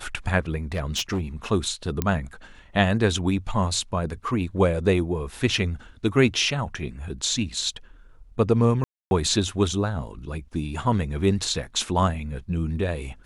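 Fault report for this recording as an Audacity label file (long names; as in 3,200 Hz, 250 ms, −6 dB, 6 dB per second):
0.720000	1.220000	clipping −21.5 dBFS
2.020000	2.020000	click −9 dBFS
8.840000	9.110000	drop-out 271 ms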